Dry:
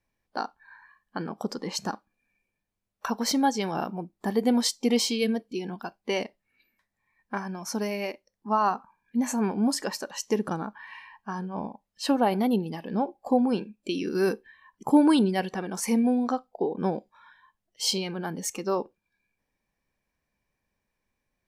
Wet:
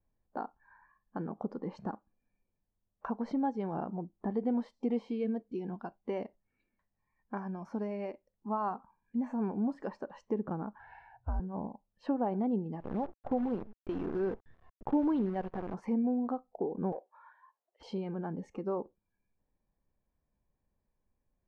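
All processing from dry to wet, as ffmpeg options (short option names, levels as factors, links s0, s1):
-filter_complex "[0:a]asettb=1/sr,asplit=3[s0][s1][s2];[s0]atrim=end=4.344[s3];[s1]atrim=start=4.34:end=9.9,asetpts=PTS-STARTPTS,afade=t=in:d=0.004:c=qsin,afade=t=out:st=5.556:d=0.004:c=qsin,aemphasis=mode=production:type=75fm,acrossover=split=2800[s4][s5];[s5]acompressor=threshold=0.0224:ratio=4:attack=1:release=60[s6];[s4][s6]amix=inputs=2:normalize=0[s7];[s2]atrim=start=9.896[s8];[s3][s7]acrossfade=d=0.004:c1=hsin:c2=qsin[s9];[s9][s8]acrossfade=d=0.004:c1=qsin:c2=hsin,asettb=1/sr,asplit=3[s10][s11][s12];[s10]atrim=end=10.794[s13];[s11]atrim=start=10.79:end=11.4,asetpts=PTS-STARTPTS,afade=t=in:d=0.004:c=qsin,afade=t=out:st=0.606:d=0.004:c=qsin,afreqshift=-130,bass=f=250:g=6,treble=f=4000:g=8[s14];[s12]atrim=start=11.396[s15];[s13][s14]acrossfade=d=0.004:c1=hsin:c2=qsin[s16];[s16][s15]acrossfade=d=0.004:c1=qsin:c2=hsin,asettb=1/sr,asplit=3[s17][s18][s19];[s17]atrim=end=12.804[s20];[s18]atrim=start=12.8:end=15.74,asetpts=PTS-STARTPTS,afade=t=in:d=0.004:c=qsin,afade=t=out:st=2.936:d=0.004:c=qsin,lowshelf=f=110:g=-9.5,acrusher=bits=6:dc=4:mix=0:aa=0.000001[s21];[s19]atrim=start=15.736[s22];[s20][s21]acrossfade=d=0.004:c1=hsin:c2=qsin[s23];[s23][s22]acrossfade=d=0.004:c1=qsin:c2=hsin,asettb=1/sr,asplit=3[s24][s25][s26];[s24]atrim=end=16.924[s27];[s25]atrim=start=16.92:end=17.83,asetpts=PTS-STARTPTS,afade=t=in:d=0.004:c=qsin,afade=t=out:st=0.906:d=0.004:c=qsin,highpass=f=450:w=0.5412,highpass=f=450:w=1.3066,asplit=2[s28][s29];[s29]highpass=f=720:p=1,volume=5.01,asoftclip=type=tanh:threshold=0.106[s30];[s28][s30]amix=inputs=2:normalize=0,lowpass=f=1200:p=1,volume=0.501,aeval=exprs='(mod(14.1*val(0)+1,2)-1)/14.1':c=same[s31];[s26]atrim=start=17.826[s32];[s27][s31]acrossfade=d=0.004:c1=hsin:c2=qsin[s33];[s33][s32]acrossfade=d=0.004:c1=qsin:c2=hsin,lowpass=1000,lowshelf=f=99:g=8.5,acompressor=threshold=0.02:ratio=1.5,volume=0.708"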